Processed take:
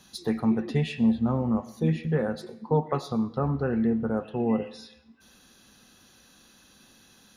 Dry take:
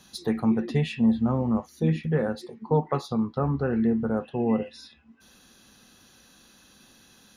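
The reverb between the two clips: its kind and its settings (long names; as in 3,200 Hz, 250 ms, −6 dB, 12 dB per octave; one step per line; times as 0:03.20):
comb and all-pass reverb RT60 0.71 s, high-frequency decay 0.9×, pre-delay 50 ms, DRR 16.5 dB
level −1 dB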